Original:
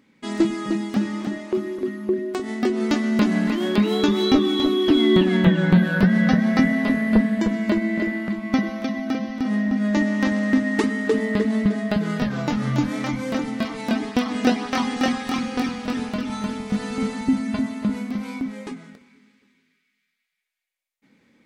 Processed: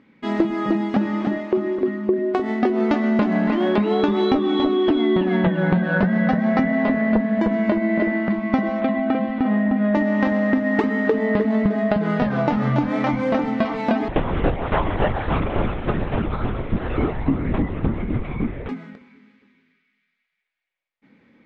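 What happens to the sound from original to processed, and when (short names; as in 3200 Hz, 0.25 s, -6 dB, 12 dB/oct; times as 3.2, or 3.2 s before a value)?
8.8–9.95 LPF 3800 Hz 24 dB/oct
14.08–18.69 LPC vocoder at 8 kHz whisper
whole clip: LPF 2700 Hz 12 dB/oct; dynamic EQ 720 Hz, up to +8 dB, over -38 dBFS, Q 1.1; compressor, threshold -20 dBFS; gain +4.5 dB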